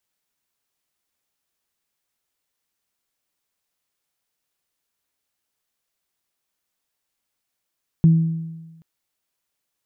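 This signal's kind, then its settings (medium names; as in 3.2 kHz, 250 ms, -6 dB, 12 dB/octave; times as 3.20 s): additive tone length 0.78 s, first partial 163 Hz, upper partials -20 dB, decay 1.21 s, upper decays 0.92 s, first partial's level -8 dB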